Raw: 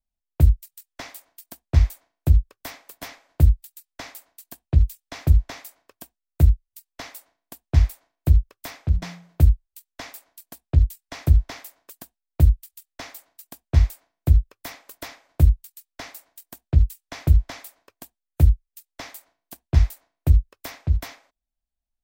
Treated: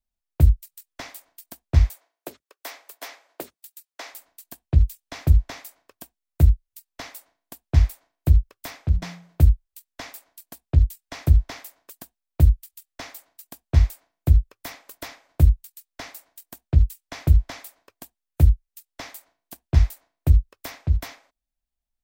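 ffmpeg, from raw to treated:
-filter_complex "[0:a]asettb=1/sr,asplit=3[a][b][c];[a]atrim=end=1.894[d];[b]atrim=start=1.89:end=4.14,asetpts=PTS-STARTPTS,afade=t=in:d=0.004:c=qsin,afade=t=out:st=2.246:d=0.004:c=qsin,highpass=f=360:w=0.5412,highpass=f=360:w=1.3066[e];[c]atrim=start=4.136[f];[d][e]acrossfade=d=0.004:c1=hsin:c2=qsin[g];[g][f]acrossfade=d=0.004:c1=qsin:c2=hsin"

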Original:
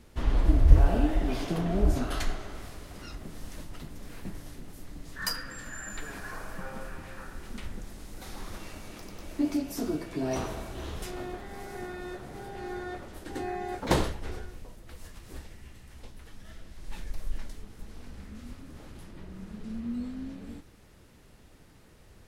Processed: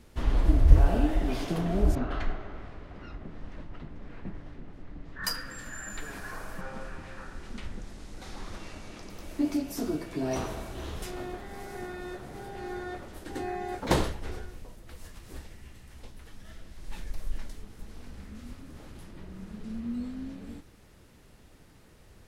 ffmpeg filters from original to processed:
-filter_complex "[0:a]asettb=1/sr,asplit=3[a][b][c];[a]atrim=end=1.954[d];[b]atrim=start=1.95:end=5.24,asetpts=PTS-STARTPTS,afade=t=in:d=0.004:c=qsin,afade=t=out:st=3.286:d=0.004:c=qsin,lowpass=2.2k[e];[c]atrim=start=5.236[f];[d][e]acrossfade=d=0.004:c1=hsin:c2=qsin[g];[g][f]acrossfade=d=0.004:c1=qsin:c2=hsin,asettb=1/sr,asplit=3[h][i][j];[h]atrim=end=6.614[k];[i]atrim=start=6.61:end=9.1,asetpts=PTS-STARTPTS,afade=t=in:d=0.004:c=qsin,afade=t=out:st=2.486:d=0.004:c=qsin,lowpass=7.5k[l];[j]atrim=start=9.096[m];[k][l]acrossfade=d=0.004:c1=hsin:c2=qsin[n];[n][m]acrossfade=d=0.004:c1=qsin:c2=hsin"

